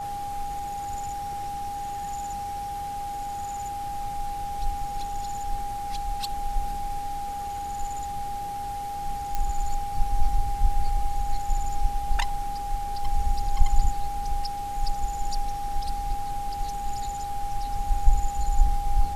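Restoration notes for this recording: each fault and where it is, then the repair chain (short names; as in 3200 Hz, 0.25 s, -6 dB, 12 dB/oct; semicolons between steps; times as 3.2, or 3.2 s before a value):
tone 810 Hz -30 dBFS
9.35 pop -14 dBFS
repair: de-click; notch 810 Hz, Q 30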